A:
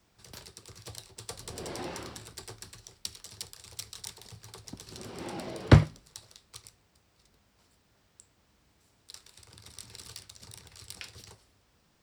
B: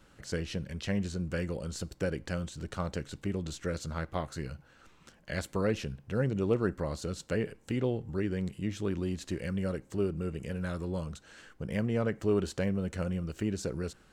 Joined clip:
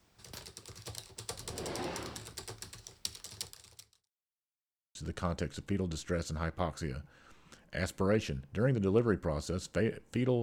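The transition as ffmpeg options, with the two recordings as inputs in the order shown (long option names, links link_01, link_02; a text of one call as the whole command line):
ffmpeg -i cue0.wav -i cue1.wav -filter_complex "[0:a]apad=whole_dur=10.42,atrim=end=10.42,asplit=2[link_01][link_02];[link_01]atrim=end=4.11,asetpts=PTS-STARTPTS,afade=type=out:start_time=3.44:duration=0.67:curve=qua[link_03];[link_02]atrim=start=4.11:end=4.95,asetpts=PTS-STARTPTS,volume=0[link_04];[1:a]atrim=start=2.5:end=7.97,asetpts=PTS-STARTPTS,afade=type=in:duration=0.004:curve=hsin[link_05];[link_03][link_04][link_05]concat=n=3:v=0:a=1" out.wav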